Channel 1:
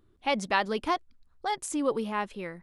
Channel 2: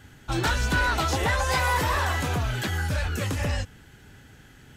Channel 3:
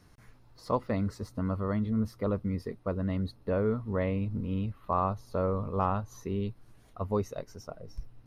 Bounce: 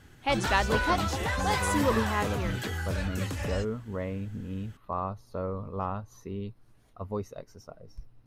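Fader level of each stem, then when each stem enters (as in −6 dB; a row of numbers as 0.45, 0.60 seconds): 0.0, −6.0, −4.0 decibels; 0.00, 0.00, 0.00 seconds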